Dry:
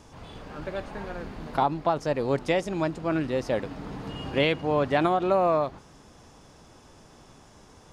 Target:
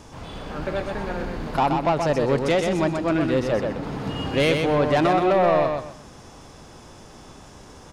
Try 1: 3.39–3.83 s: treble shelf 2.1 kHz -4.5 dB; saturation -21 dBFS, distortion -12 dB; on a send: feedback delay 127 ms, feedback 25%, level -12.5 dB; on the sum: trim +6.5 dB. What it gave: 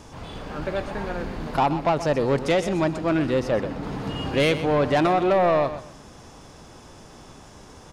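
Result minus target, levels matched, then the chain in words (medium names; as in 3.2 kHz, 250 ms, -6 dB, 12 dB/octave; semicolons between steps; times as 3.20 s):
echo-to-direct -7.5 dB
3.39–3.83 s: treble shelf 2.1 kHz -4.5 dB; saturation -21 dBFS, distortion -12 dB; on a send: feedback delay 127 ms, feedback 25%, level -5 dB; on the sum: trim +6.5 dB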